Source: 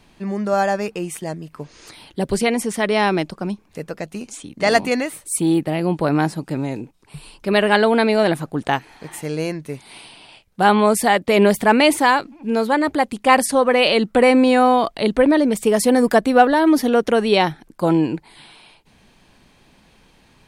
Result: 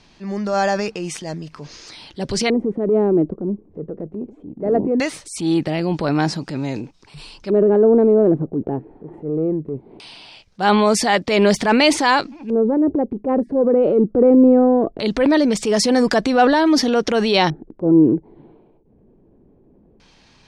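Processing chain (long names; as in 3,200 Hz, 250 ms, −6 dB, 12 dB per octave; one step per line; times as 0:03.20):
auto-filter low-pass square 0.2 Hz 400–5,500 Hz
transient designer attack −6 dB, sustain +5 dB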